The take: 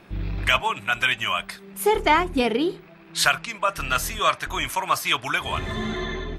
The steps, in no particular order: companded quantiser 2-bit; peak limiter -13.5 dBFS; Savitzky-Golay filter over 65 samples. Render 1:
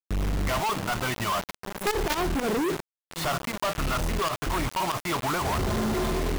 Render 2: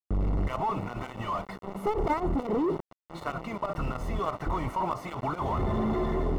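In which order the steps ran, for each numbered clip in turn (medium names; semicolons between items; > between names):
Savitzky-Golay filter > companded quantiser > peak limiter; companded quantiser > peak limiter > Savitzky-Golay filter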